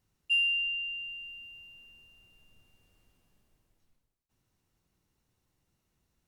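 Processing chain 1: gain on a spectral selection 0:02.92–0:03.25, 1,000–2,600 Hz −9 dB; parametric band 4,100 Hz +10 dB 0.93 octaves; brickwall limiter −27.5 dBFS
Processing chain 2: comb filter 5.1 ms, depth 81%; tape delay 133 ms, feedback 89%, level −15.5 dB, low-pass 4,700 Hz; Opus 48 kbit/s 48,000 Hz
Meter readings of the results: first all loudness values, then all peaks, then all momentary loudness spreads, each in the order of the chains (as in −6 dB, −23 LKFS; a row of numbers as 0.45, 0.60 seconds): −31.0, −25.0 LKFS; −27.5, −17.0 dBFS; 19, 20 LU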